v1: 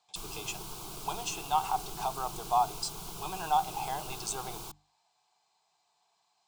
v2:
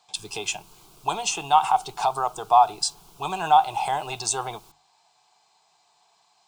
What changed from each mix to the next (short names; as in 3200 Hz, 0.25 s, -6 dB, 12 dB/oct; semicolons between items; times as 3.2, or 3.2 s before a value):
speech +10.5 dB; background -10.0 dB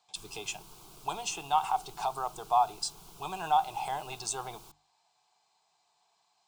speech -9.0 dB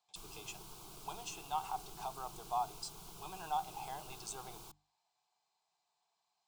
speech -11.0 dB